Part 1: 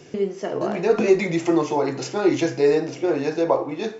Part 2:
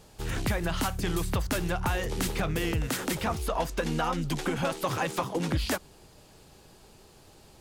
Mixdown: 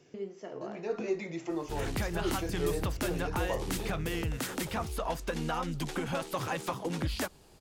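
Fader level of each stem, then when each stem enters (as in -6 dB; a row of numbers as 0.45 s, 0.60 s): -15.5 dB, -4.5 dB; 0.00 s, 1.50 s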